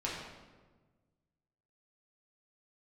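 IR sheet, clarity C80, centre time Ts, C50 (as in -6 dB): 3.5 dB, 69 ms, 1.0 dB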